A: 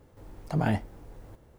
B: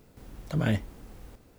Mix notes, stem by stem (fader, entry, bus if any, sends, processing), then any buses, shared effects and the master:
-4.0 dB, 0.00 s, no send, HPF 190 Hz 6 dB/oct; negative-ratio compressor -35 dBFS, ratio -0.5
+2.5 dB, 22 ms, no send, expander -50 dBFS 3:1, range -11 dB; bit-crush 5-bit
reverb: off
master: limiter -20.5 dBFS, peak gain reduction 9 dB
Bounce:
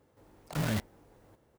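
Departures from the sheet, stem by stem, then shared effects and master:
stem A -4.0 dB -> -13.0 dB; stem B +2.5 dB -> -4.5 dB

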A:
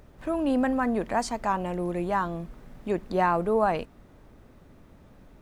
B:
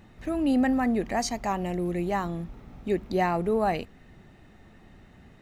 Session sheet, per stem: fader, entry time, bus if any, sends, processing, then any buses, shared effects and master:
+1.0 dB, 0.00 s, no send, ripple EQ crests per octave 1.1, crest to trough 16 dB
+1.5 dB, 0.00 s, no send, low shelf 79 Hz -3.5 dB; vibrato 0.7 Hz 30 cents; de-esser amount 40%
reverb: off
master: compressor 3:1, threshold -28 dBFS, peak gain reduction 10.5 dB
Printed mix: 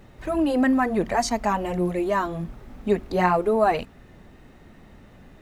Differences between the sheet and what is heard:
stem A: missing ripple EQ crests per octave 1.1, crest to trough 16 dB; master: missing compressor 3:1, threshold -28 dBFS, peak gain reduction 10.5 dB

